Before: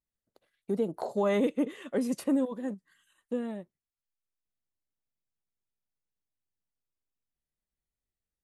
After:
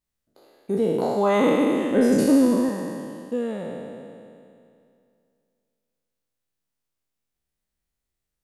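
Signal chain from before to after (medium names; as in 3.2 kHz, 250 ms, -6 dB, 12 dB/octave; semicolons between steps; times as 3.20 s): spectral sustain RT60 2.44 s; 1.91–2.69 s: bass shelf 220 Hz +10 dB; trim +4 dB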